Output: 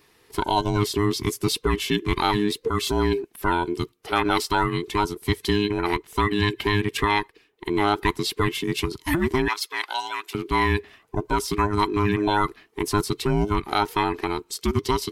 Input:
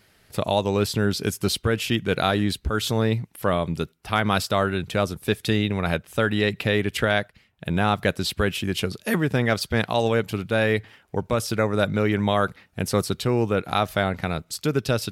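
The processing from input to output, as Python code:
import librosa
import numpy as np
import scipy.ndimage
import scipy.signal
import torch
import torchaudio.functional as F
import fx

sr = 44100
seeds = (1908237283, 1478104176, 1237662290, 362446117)

y = fx.band_invert(x, sr, width_hz=500)
y = fx.highpass(y, sr, hz=1100.0, slope=12, at=(9.48, 10.35))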